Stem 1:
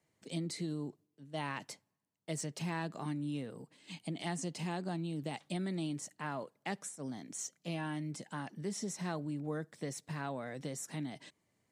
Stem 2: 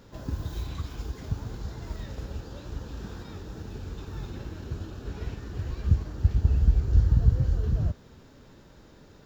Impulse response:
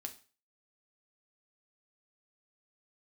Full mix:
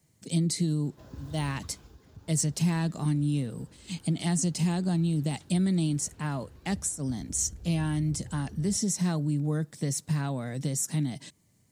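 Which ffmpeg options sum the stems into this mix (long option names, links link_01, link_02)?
-filter_complex "[0:a]bass=frequency=250:gain=14,treble=frequency=4000:gain=12,volume=2.5dB[link_01];[1:a]highpass=67,asoftclip=type=tanh:threshold=-21dB,adelay=850,volume=-8.5dB,afade=type=out:start_time=1.54:duration=0.43:silence=0.421697[link_02];[link_01][link_02]amix=inputs=2:normalize=0"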